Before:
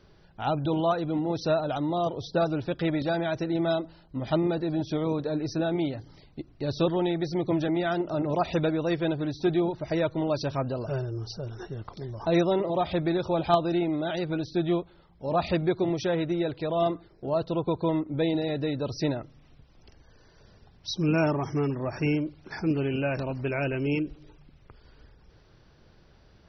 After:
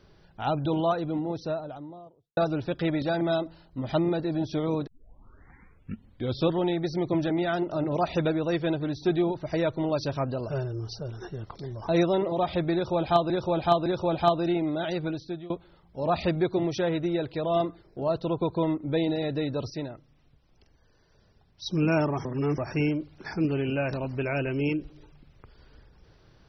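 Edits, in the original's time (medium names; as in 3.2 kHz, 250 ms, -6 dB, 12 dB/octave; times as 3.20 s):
0.74–2.37 s: studio fade out
3.21–3.59 s: delete
5.25 s: tape start 1.61 s
13.12–13.68 s: loop, 3 plays
14.28–14.76 s: fade out, to -23.5 dB
18.96–20.92 s: gain -7 dB
21.51–21.84 s: reverse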